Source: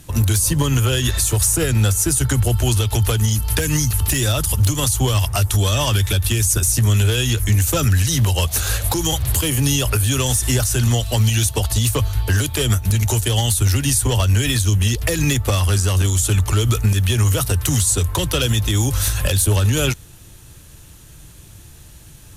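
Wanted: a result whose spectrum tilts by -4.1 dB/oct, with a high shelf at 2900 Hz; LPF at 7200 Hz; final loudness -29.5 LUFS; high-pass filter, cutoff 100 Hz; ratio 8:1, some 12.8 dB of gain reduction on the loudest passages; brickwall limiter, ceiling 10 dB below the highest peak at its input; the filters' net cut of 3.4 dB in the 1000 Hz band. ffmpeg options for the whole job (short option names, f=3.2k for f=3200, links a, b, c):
-af "highpass=100,lowpass=7.2k,equalizer=f=1k:t=o:g=-5.5,highshelf=f=2.9k:g=6.5,acompressor=threshold=-28dB:ratio=8,volume=2dB,alimiter=limit=-20dB:level=0:latency=1"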